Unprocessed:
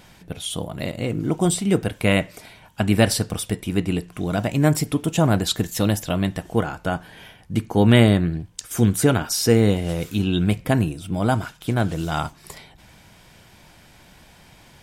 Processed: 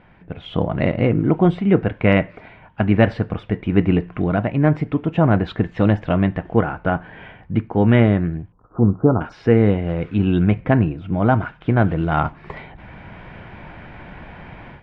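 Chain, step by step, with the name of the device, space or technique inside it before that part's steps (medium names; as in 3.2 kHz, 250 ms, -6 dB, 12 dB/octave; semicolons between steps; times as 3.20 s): 8.52–9.21 s: Chebyshev low-pass 1.3 kHz, order 6; action camera in a waterproof case (low-pass 2.3 kHz 24 dB/octave; level rider gain up to 14 dB; trim -1 dB; AAC 96 kbps 48 kHz)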